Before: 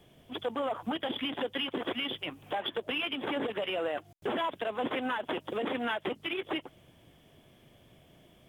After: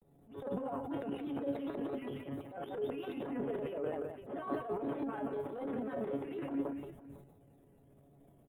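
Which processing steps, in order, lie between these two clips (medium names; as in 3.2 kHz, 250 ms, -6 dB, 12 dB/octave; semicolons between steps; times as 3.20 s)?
granulator, spray 22 ms, pitch spread up and down by 3 st; feedback comb 140 Hz, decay 0.2 s, harmonics all, mix 80%; multi-tap echo 178/506 ms -9.5/-17.5 dB; transient shaper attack -11 dB, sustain +11 dB; FFT filter 400 Hz 0 dB, 1.4 kHz -11 dB, 4.4 kHz -28 dB, 9.9 kHz -5 dB; trim +5.5 dB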